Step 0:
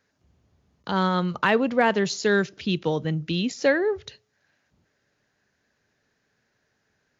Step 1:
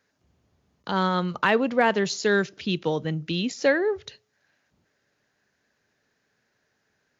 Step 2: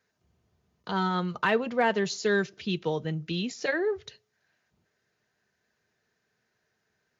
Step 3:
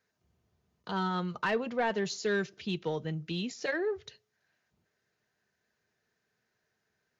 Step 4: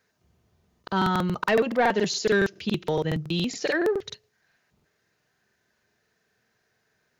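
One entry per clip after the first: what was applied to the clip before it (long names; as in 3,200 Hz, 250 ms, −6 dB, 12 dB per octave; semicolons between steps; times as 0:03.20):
low-shelf EQ 130 Hz −6 dB
notch comb filter 280 Hz; level −3 dB
soft clipping −16.5 dBFS, distortion −18 dB; level −3.5 dB
regular buffer underruns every 0.14 s, samples 2,048, repeat, from 0:00.55; level +8 dB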